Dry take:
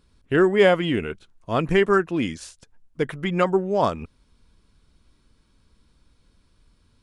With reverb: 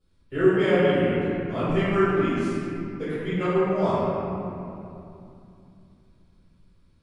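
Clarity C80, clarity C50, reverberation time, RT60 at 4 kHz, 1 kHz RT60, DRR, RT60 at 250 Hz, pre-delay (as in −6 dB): −3.0 dB, −5.5 dB, 2.8 s, 1.6 s, 2.6 s, −16.5 dB, 3.9 s, 3 ms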